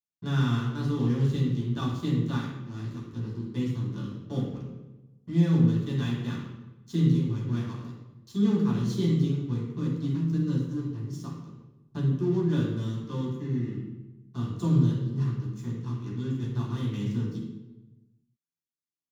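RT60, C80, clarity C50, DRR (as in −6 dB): 1.1 s, 4.0 dB, 1.0 dB, −7.0 dB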